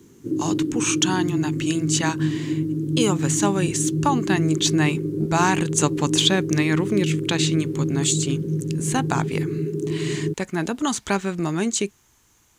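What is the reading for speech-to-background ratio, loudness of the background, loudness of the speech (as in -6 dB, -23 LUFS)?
1.5 dB, -25.5 LUFS, -24.0 LUFS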